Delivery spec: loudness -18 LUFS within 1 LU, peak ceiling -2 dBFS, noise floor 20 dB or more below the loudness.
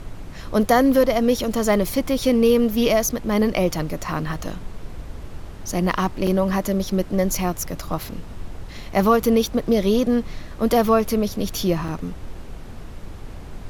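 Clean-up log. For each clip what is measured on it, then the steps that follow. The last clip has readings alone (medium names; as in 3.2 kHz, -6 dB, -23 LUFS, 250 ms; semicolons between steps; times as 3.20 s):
dropouts 2; longest dropout 3.7 ms; noise floor -37 dBFS; noise floor target -41 dBFS; loudness -21.0 LUFS; peak level -6.0 dBFS; loudness target -18.0 LUFS
-> interpolate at 6.27/11.88 s, 3.7 ms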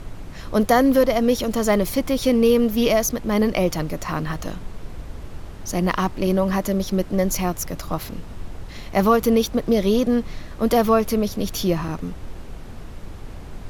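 dropouts 0; noise floor -37 dBFS; noise floor target -41 dBFS
-> noise print and reduce 6 dB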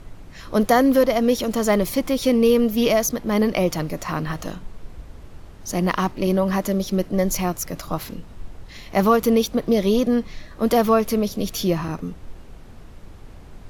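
noise floor -42 dBFS; loudness -21.0 LUFS; peak level -6.0 dBFS; loudness target -18.0 LUFS
-> trim +3 dB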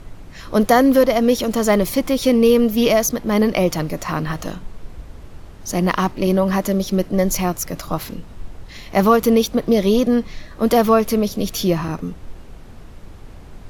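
loudness -18.0 LUFS; peak level -3.0 dBFS; noise floor -39 dBFS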